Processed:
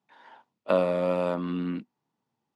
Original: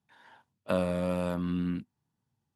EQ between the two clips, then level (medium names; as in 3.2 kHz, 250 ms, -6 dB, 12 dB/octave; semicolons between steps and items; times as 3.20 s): band-pass 290–4500 Hz; peaking EQ 1.6 kHz -6 dB 0.3 oct; peaking EQ 3.5 kHz -4 dB 1.4 oct; +7.0 dB